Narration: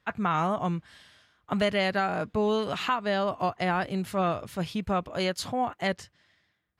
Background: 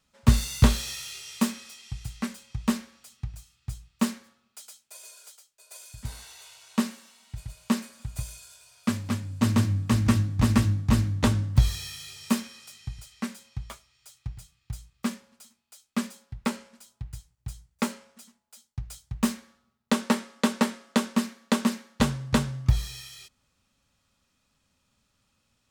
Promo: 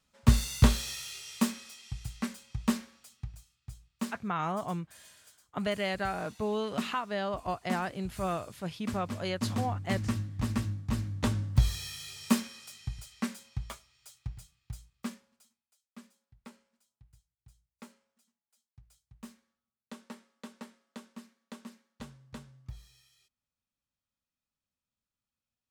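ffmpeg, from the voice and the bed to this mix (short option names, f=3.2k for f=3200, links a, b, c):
-filter_complex "[0:a]adelay=4050,volume=-6dB[a];[1:a]volume=6dB,afade=t=out:st=2.9:d=0.72:silence=0.446684,afade=t=in:st=10.97:d=1.21:silence=0.354813,afade=t=out:st=13.82:d=1.94:silence=0.0841395[b];[a][b]amix=inputs=2:normalize=0"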